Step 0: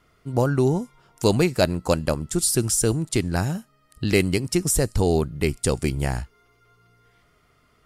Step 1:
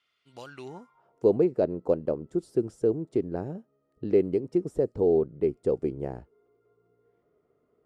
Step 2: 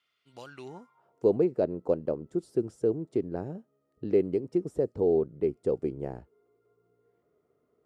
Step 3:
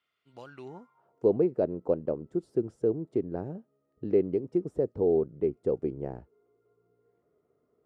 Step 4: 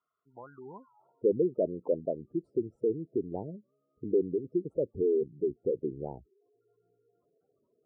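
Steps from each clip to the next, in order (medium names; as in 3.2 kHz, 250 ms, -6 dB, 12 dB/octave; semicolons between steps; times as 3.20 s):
band-pass sweep 3.2 kHz -> 440 Hz, 0.52–1.22 s; bass shelf 480 Hz +7 dB; trim -2.5 dB
high-pass 53 Hz; trim -2 dB
treble shelf 3.1 kHz -11.5 dB
spectral gate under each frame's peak -15 dB strong; resonant high shelf 1.6 kHz -12.5 dB, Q 3; warped record 45 rpm, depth 160 cents; trim -3 dB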